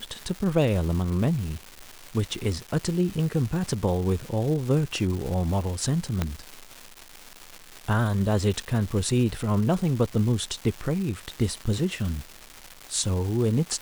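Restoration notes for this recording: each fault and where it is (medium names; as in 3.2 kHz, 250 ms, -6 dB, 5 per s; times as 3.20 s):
crackle 570 per s -32 dBFS
6.22 s: pop -11 dBFS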